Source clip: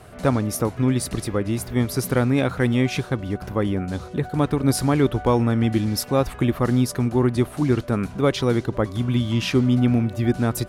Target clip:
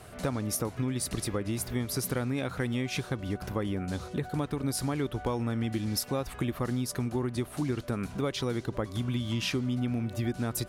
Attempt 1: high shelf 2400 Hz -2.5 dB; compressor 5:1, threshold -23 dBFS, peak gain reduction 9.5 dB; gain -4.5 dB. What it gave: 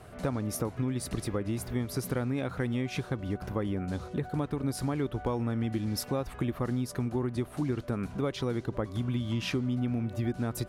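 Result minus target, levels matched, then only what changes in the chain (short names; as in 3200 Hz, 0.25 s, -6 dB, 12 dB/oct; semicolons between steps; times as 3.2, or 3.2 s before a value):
4000 Hz band -4.0 dB
change: high shelf 2400 Hz +5.5 dB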